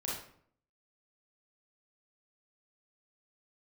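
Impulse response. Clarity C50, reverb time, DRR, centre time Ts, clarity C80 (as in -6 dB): 0.5 dB, 0.60 s, -5.5 dB, 52 ms, 6.5 dB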